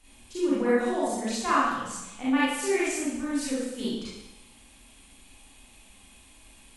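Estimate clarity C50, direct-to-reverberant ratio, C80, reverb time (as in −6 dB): −3.0 dB, −9.5 dB, 2.5 dB, 0.95 s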